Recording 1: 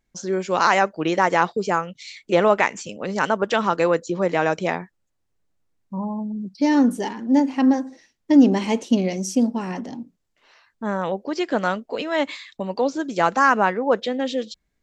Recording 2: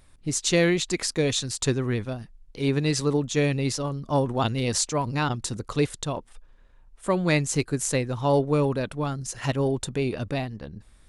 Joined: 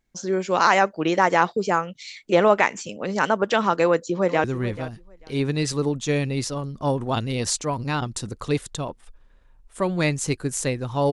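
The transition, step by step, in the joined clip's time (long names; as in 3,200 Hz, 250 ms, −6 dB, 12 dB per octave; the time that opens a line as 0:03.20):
recording 1
0:03.84–0:04.44: delay throw 440 ms, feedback 15%, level −14.5 dB
0:04.44: continue with recording 2 from 0:01.72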